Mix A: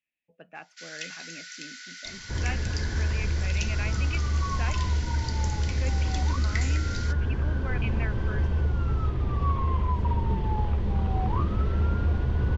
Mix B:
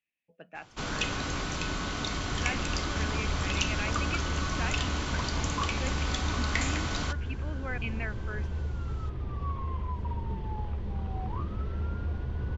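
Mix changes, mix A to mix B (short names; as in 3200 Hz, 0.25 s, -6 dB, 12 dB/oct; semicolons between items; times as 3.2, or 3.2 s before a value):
first sound: remove rippled Chebyshev high-pass 1400 Hz, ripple 9 dB; second sound -8.0 dB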